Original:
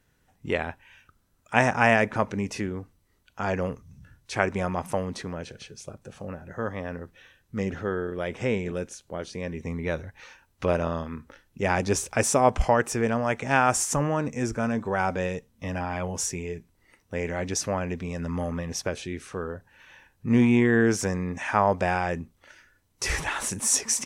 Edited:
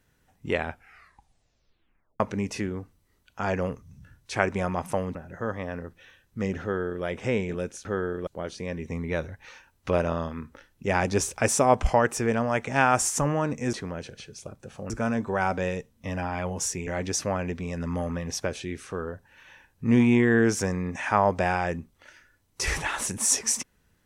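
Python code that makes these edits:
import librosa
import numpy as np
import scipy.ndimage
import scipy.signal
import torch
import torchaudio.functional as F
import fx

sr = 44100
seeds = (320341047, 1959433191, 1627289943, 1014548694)

y = fx.edit(x, sr, fx.tape_stop(start_s=0.64, length_s=1.56),
    fx.move(start_s=5.15, length_s=1.17, to_s=14.48),
    fx.duplicate(start_s=7.79, length_s=0.42, to_s=9.02),
    fx.cut(start_s=16.45, length_s=0.84), tone=tone)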